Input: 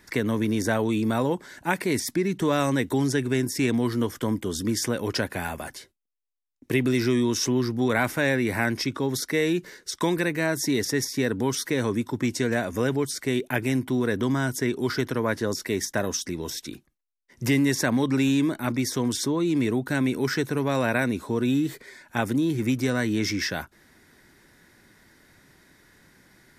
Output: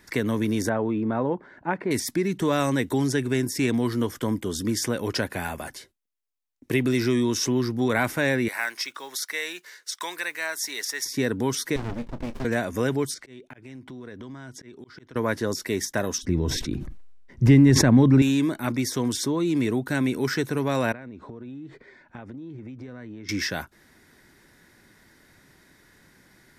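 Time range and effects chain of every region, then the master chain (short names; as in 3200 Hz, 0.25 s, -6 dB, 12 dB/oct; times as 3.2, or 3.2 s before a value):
0.69–1.91 LPF 1400 Hz + low shelf 120 Hz -6 dB
8.48–11.06 block floating point 7-bit + HPF 1000 Hz
11.76–12.45 BPF 270–5200 Hz + doubler 30 ms -12 dB + running maximum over 65 samples
13.14–15.16 LPF 5900 Hz + auto swell 0.594 s + compressor 4:1, threshold -39 dBFS
16.18–18.22 RIAA curve playback + sustainer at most 35 dB/s
20.92–23.29 tape spacing loss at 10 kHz 31 dB + compressor 16:1, threshold -35 dBFS
whole clip: dry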